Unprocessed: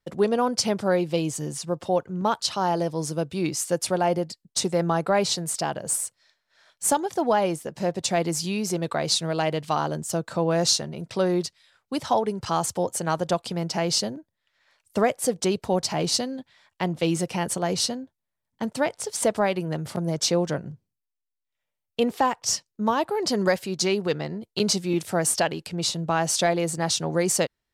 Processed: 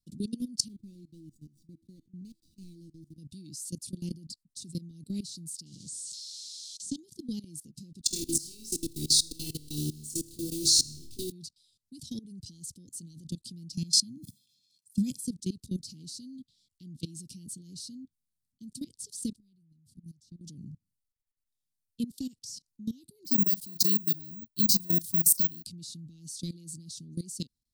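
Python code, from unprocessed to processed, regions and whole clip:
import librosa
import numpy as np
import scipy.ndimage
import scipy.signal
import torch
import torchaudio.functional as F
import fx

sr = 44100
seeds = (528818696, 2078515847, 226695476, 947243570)

y = fx.chain(x, sr, fx.median_filter(points=41),
    fx.peak_eq(hz=5300.0, db=-3.5, octaves=2.3),
    fx.comb_fb(f0_hz=330.0, decay_s=0.25, harmonics='all', damping=0.0, mix_pct=80), at=(0.68, 3.18))
y = fx.chain(y, sr, fx.crossing_spikes(level_db=-23.5),
    fx.lowpass(hz=6600.0, slope=24),
    fx.notch(hz=2600.0, q=27.0), at=(5.66, 6.96))
y = fx.chain(y, sr, fx.delta_hold(step_db=-33.5),
    fx.comb(ms=2.6, depth=0.94),
    fx.room_flutter(wall_m=4.6, rt60_s=0.52), at=(8.05, 11.32))
y = fx.chain(y, sr, fx.highpass(hz=130.0, slope=24),
    fx.comb(ms=1.2, depth=0.96),
    fx.sustainer(db_per_s=58.0), at=(13.74, 15.28))
y = fx.chain(y, sr, fx.tone_stack(knobs='10-0-1'),
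    fx.band_squash(depth_pct=70), at=(19.36, 20.41))
y = fx.chain(y, sr, fx.doubler(ms=30.0, db=-10),
    fx.resample_bad(factor=2, down='none', up='zero_stuff'), at=(23.25, 25.64))
y = fx.level_steps(y, sr, step_db=21)
y = scipy.signal.sosfilt(scipy.signal.ellip(3, 1.0, 50, [260.0, 4200.0], 'bandstop', fs=sr, output='sos'), y)
y = fx.peak_eq(y, sr, hz=9300.0, db=5.5, octaves=0.46)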